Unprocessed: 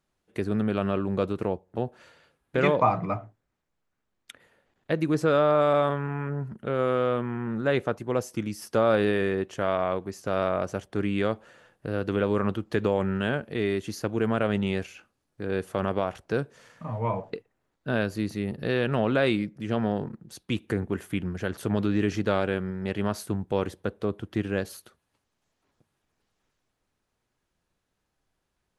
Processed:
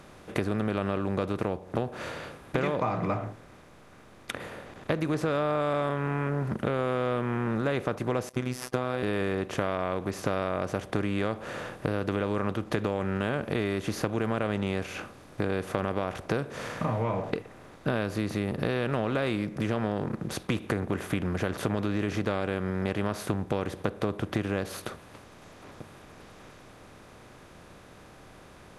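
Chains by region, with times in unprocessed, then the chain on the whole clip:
0:08.29–0:09.03: downward expander −41 dBFS + phases set to zero 126 Hz
whole clip: compressor on every frequency bin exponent 0.6; low-shelf EQ 86 Hz +9 dB; downward compressor 6 to 1, threshold −27 dBFS; level +2 dB

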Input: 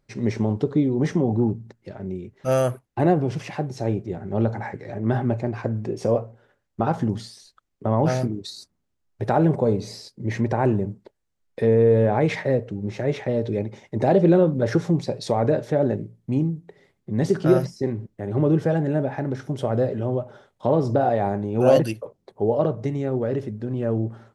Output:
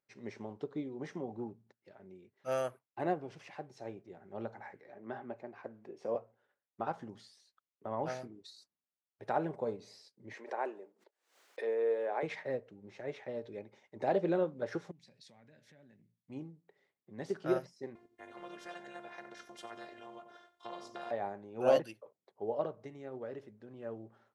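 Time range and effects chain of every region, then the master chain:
0:04.81–0:06.15: high-pass filter 170 Hz + high-shelf EQ 4,700 Hz −10 dB
0:10.33–0:12.23: high-pass filter 340 Hz 24 dB per octave + background raised ahead of every attack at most 110 dB per second
0:14.91–0:16.30: high-pass filter 97 Hz + flat-topped bell 650 Hz −15.5 dB 2.3 octaves + downward compressor 3 to 1, threshold −37 dBFS
0:17.95–0:21.11: repeating echo 90 ms, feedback 36%, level −18 dB + phases set to zero 350 Hz + every bin compressed towards the loudest bin 2 to 1
whole clip: high-pass filter 750 Hz 6 dB per octave; high-shelf EQ 5,400 Hz −9 dB; expander for the loud parts 1.5 to 1, over −34 dBFS; level −5 dB

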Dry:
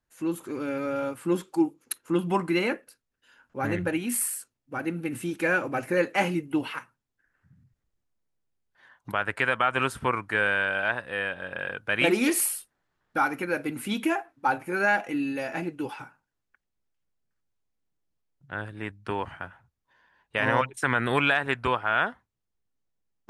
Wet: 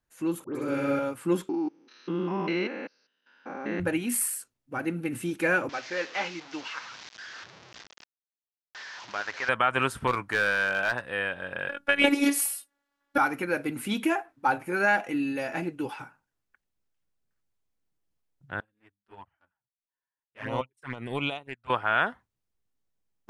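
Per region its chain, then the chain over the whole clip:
0:00.44–0:00.99: all-pass dispersion highs, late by 112 ms, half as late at 1,800 Hz + flutter between parallel walls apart 11 metres, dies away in 1.4 s
0:01.49–0:03.80: spectrum averaged block by block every 200 ms + linear-phase brick-wall band-pass 160–6,300 Hz
0:05.69–0:09.49: linear delta modulator 32 kbit/s, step −34 dBFS + high-pass filter 1,200 Hz 6 dB per octave
0:10.07–0:11.01: gain into a clipping stage and back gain 19 dB + double-tracking delay 16 ms −12 dB
0:11.69–0:13.18: high-pass filter 150 Hz + transient designer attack +8 dB, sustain +1 dB + phases set to zero 283 Hz
0:18.60–0:21.70: transient designer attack −8 dB, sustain −1 dB + flanger swept by the level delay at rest 7.7 ms, full sweep at −22.5 dBFS + expander for the loud parts 2.5 to 1, over −45 dBFS
whole clip: no processing

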